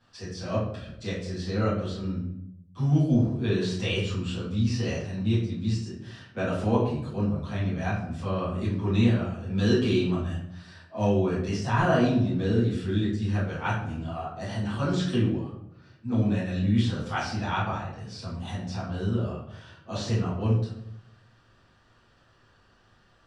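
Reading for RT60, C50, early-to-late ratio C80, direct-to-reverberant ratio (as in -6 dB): 0.75 s, 3.5 dB, 7.0 dB, -11.5 dB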